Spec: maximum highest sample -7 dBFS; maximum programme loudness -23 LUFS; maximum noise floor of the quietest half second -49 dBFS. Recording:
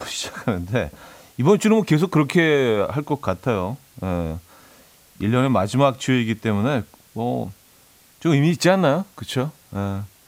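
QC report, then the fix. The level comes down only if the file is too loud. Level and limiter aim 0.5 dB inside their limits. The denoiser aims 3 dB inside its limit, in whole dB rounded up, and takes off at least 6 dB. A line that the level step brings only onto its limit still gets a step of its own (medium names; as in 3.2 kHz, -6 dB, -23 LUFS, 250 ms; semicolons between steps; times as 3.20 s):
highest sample -4.5 dBFS: fail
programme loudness -21.0 LUFS: fail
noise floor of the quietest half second -53 dBFS: pass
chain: trim -2.5 dB; peak limiter -7.5 dBFS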